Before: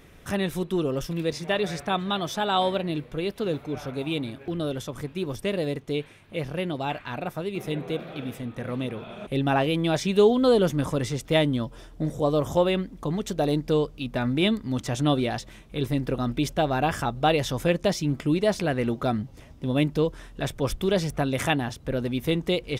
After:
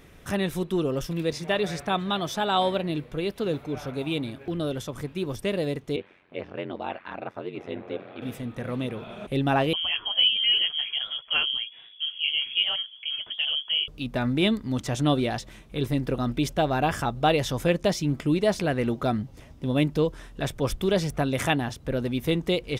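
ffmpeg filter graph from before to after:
ffmpeg -i in.wav -filter_complex "[0:a]asettb=1/sr,asplit=3[link_01][link_02][link_03];[link_01]atrim=end=5.964[link_04];[link_02]atrim=start=5.96:end=8.22,asetpts=PTS-STARTPTS,afade=type=in:duration=0.004:curve=qsin,afade=type=out:start_time=2.256:duration=0.004:curve=qsin,highpass=240,lowpass=2700,aeval=exprs='val(0)*sin(2*PI*45*n/s)':channel_layout=same[link_05];[link_03]atrim=start=8.216[link_06];[link_04][link_05]acrossfade=duration=0.004:curve1=hsin:curve2=qsin[link_07];[link_07][link_06]acrossfade=duration=0.004:curve1=qsin:curve2=hsin,asettb=1/sr,asplit=3[link_08][link_09][link_10];[link_08]atrim=end=9.734[link_11];[link_09]atrim=start=9.73:end=13.88,asetpts=PTS-STARTPTS,afade=type=in:duration=0.004:curve=qsin,afade=type=out:start_time=4.146:duration=0.004:curve=qsin,lowpass=frequency=2900:width_type=q:width=0.5098,lowpass=frequency=2900:width_type=q:width=0.6013,lowpass=frequency=2900:width_type=q:width=0.9,lowpass=frequency=2900:width_type=q:width=2.563,afreqshift=-3400,flanger=delay=1.6:depth=8.3:regen=-41:speed=1.3:shape=sinusoidal[link_12];[link_10]atrim=start=13.876[link_13];[link_11][link_12]acrossfade=duration=0.004:curve1=hsin:curve2=qsin[link_14];[link_14][link_13]acrossfade=duration=0.004:curve1=qsin:curve2=hsin" out.wav

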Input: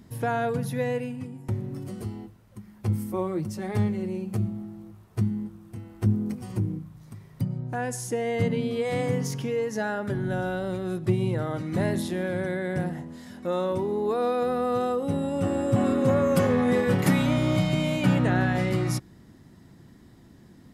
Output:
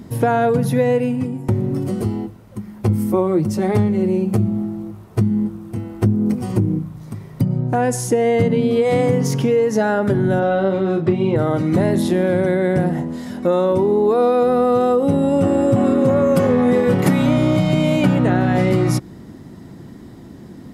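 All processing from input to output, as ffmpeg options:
ffmpeg -i in.wav -filter_complex "[0:a]asettb=1/sr,asplit=3[link_01][link_02][link_03];[link_01]atrim=end=10.394[link_04];[link_02]atrim=start=10.39:end=11.36,asetpts=PTS-STARTPTS,afade=type=in:duration=0.004:curve=qsin,afade=type=out:start_time=0.966:duration=0.004:curve=qsin,lowpass=3800,lowshelf=frequency=120:gain=-11.5,asplit=2[link_05][link_06];[link_06]adelay=31,volume=-4dB[link_07];[link_05][link_07]amix=inputs=2:normalize=0,atrim=end_sample=42777[link_08];[link_03]atrim=start=11.356[link_09];[link_04][link_08]acrossfade=duration=0.004:curve1=hsin:curve2=qsin[link_10];[link_10][link_09]acrossfade=duration=0.004:curve1=qsin:curve2=hsin,equalizer=frequency=370:width=0.38:gain=6.5,bandreject=frequency=1700:width=26,acompressor=threshold=-22dB:ratio=4,volume=9dB" out.wav

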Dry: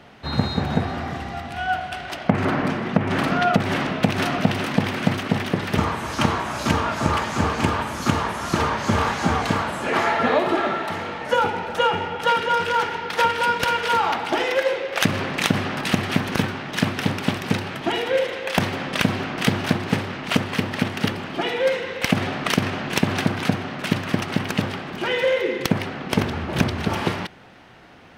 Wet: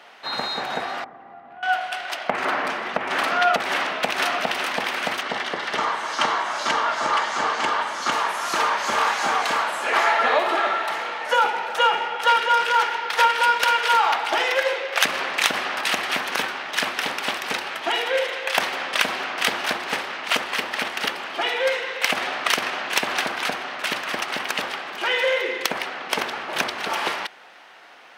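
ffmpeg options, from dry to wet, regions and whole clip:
ffmpeg -i in.wav -filter_complex "[0:a]asettb=1/sr,asplit=3[link_01][link_02][link_03];[link_01]atrim=end=1.044[link_04];[link_02]atrim=start=1.04:end=1.63,asetpts=PTS-STARTPTS,afade=type=in:duration=0.004:curve=qsin,afade=type=out:start_time=0.586:duration=0.004:curve=qsin,lowpass=1100,acrossover=split=94|300[link_05][link_06][link_07];[link_05]acompressor=threshold=-46dB:ratio=4[link_08];[link_06]acompressor=threshold=-37dB:ratio=4[link_09];[link_07]acompressor=threshold=-44dB:ratio=4[link_10];[link_08][link_09][link_10]amix=inputs=3:normalize=0[link_11];[link_03]atrim=start=1.626[link_12];[link_04][link_11]acrossfade=duration=0.004:curve1=hsin:curve2=qsin[link_13];[link_13][link_12]acrossfade=duration=0.004:curve1=qsin:curve2=hsin,asettb=1/sr,asplit=3[link_14][link_15][link_16];[link_14]atrim=end=5.214[link_17];[link_15]atrim=start=5.21:end=8.12,asetpts=PTS-STARTPTS,afade=type=in:duration=0.004:curve=qsin,afade=type=out:start_time=2.906:duration=0.004:curve=qsin,lowpass=6600,bandreject=frequency=2500:width=11[link_18];[link_16]atrim=start=8.116[link_19];[link_17][link_18]acrossfade=duration=0.004:curve1=hsin:curve2=qsin[link_20];[link_20][link_19]acrossfade=duration=0.004:curve1=qsin:curve2=hsin,highpass=690,acontrast=22,volume=-1.5dB" out.wav

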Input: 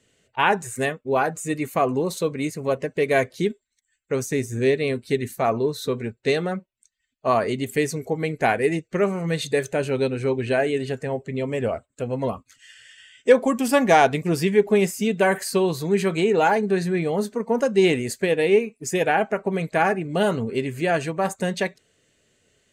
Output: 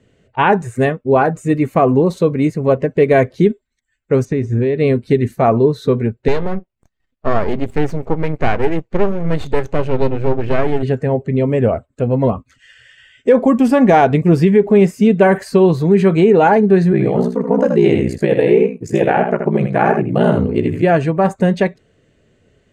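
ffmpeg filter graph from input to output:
ffmpeg -i in.wav -filter_complex "[0:a]asettb=1/sr,asplit=3[link_01][link_02][link_03];[link_01]atrim=end=4.254[link_04];[link_02]atrim=start=4.25:end=4.79,asetpts=PTS-STARTPTS,afade=type=in:duration=0.004:curve=qsin,afade=type=out:start_time=0.536:duration=0.004:curve=qsin,lowpass=4600,acompressor=threshold=-24dB:ratio=4:attack=3.2:release=140:knee=1:detection=peak[link_05];[link_03]atrim=start=4.786[link_06];[link_04][link_05]acrossfade=duration=0.004:curve1=hsin:curve2=qsin[link_07];[link_07][link_06]acrossfade=duration=0.004:curve1=qsin:curve2=hsin,asettb=1/sr,asplit=3[link_08][link_09][link_10];[link_08]atrim=end=6.284[link_11];[link_09]atrim=start=6.28:end=10.83,asetpts=PTS-STARTPTS,afade=type=in:duration=0.004:curve=qsin,afade=type=out:start_time=4.546:duration=0.004:curve=qsin,lowpass=8400,aeval=exprs='max(val(0),0)':channel_layout=same[link_12];[link_10]atrim=start=10.826[link_13];[link_11][link_12]acrossfade=duration=0.004:curve1=hsin:curve2=qsin[link_14];[link_14][link_13]acrossfade=duration=0.004:curve1=qsin:curve2=hsin,asettb=1/sr,asplit=3[link_15][link_16][link_17];[link_15]atrim=end=16.924[link_18];[link_16]atrim=start=16.92:end=20.83,asetpts=PTS-STARTPTS,afade=type=in:duration=0.004:curve=qsin,afade=type=out:start_time=3.906:duration=0.004:curve=qsin,aeval=exprs='val(0)*sin(2*PI*30*n/s)':channel_layout=same,aecho=1:1:79:0.501,atrim=end_sample=172431[link_19];[link_17]atrim=start=20.826[link_20];[link_18][link_19]acrossfade=duration=0.004:curve1=hsin:curve2=qsin[link_21];[link_21][link_20]acrossfade=duration=0.004:curve1=qsin:curve2=hsin,lowpass=frequency=1200:poles=1,lowshelf=frequency=250:gain=6,alimiter=level_in=10dB:limit=-1dB:release=50:level=0:latency=1,volume=-1dB" out.wav

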